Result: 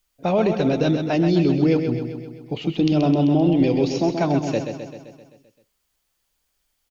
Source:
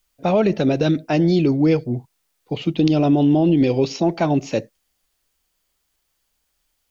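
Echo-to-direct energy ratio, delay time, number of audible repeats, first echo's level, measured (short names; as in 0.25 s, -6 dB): -5.0 dB, 0.13 s, 7, -7.0 dB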